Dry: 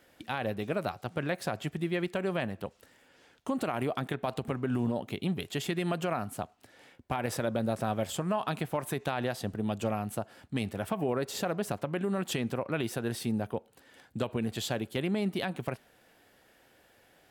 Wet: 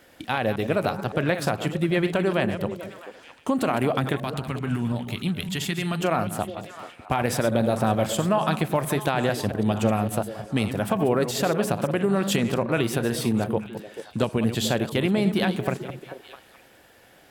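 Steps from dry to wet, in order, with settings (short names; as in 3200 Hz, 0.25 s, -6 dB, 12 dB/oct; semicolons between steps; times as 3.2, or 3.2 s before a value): reverse delay 0.112 s, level -10 dB; 4.16–6.01 bell 490 Hz -11.5 dB 1.9 oct; delay with a stepping band-pass 0.219 s, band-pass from 160 Hz, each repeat 1.4 oct, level -7 dB; gain +8 dB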